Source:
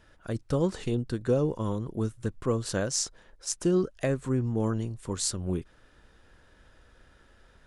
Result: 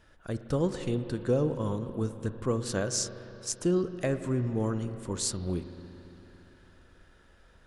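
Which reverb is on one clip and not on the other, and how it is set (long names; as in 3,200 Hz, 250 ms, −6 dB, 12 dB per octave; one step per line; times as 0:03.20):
spring reverb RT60 3.4 s, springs 40/56 ms, chirp 20 ms, DRR 9.5 dB
level −1.5 dB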